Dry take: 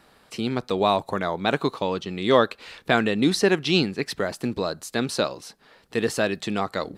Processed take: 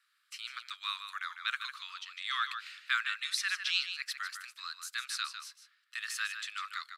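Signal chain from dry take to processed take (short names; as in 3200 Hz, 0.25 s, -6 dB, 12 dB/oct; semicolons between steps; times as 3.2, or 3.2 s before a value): gate -48 dBFS, range -9 dB; steep high-pass 1200 Hz 72 dB/oct; outdoor echo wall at 26 m, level -8 dB; gain -6 dB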